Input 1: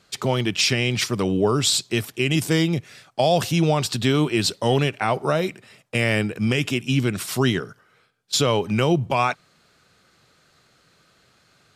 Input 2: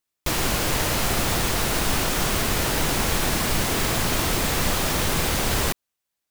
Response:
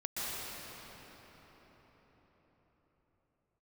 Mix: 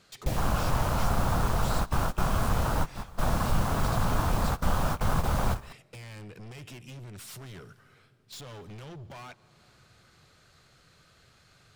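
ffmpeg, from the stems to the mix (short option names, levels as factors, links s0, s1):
-filter_complex "[0:a]asubboost=boost=3:cutoff=120,acompressor=threshold=0.0178:ratio=2.5,aeval=exprs='(tanh(100*val(0)+0.15)-tanh(0.15))/100':c=same,volume=0.794,asplit=3[s0][s1][s2];[s1]volume=0.0668[s3];[1:a]afwtdn=0.0562,equalizer=f=360:t=o:w=1.1:g=-12.5,acontrast=66,volume=0.562[s4];[s2]apad=whole_len=277907[s5];[s4][s5]sidechaingate=range=0.0794:threshold=0.00355:ratio=16:detection=peak[s6];[2:a]atrim=start_sample=2205[s7];[s3][s7]afir=irnorm=-1:irlink=0[s8];[s0][s6][s8]amix=inputs=3:normalize=0"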